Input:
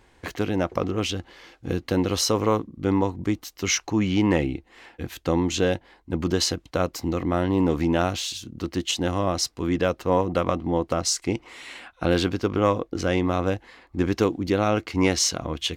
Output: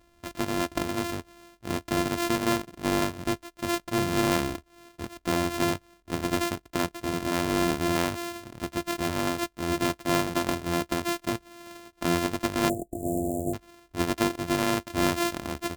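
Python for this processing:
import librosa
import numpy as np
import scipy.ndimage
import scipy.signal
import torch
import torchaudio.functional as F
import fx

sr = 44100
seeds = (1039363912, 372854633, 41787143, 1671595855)

y = np.r_[np.sort(x[:len(x) // 128 * 128].reshape(-1, 128), axis=1).ravel(), x[len(x) // 128 * 128:]]
y = fx.cheby1_bandstop(y, sr, low_hz=730.0, high_hz=7300.0, order=5, at=(12.68, 13.53), fade=0.02)
y = y * 10.0 ** (-4.0 / 20.0)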